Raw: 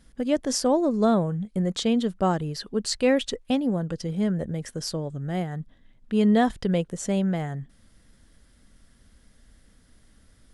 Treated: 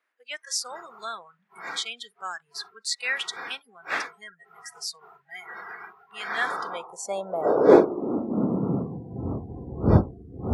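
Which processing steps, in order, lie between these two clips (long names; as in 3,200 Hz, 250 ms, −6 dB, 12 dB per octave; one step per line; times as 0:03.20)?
wind on the microphone 340 Hz −22 dBFS
high-pass filter sweep 1,800 Hz → 65 Hz, 0:06.20–0:09.68
noise reduction from a noise print of the clip's start 27 dB
level −1 dB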